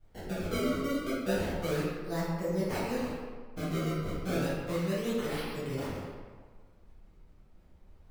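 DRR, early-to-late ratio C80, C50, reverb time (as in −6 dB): −11.0 dB, 1.5 dB, −1.5 dB, 1.6 s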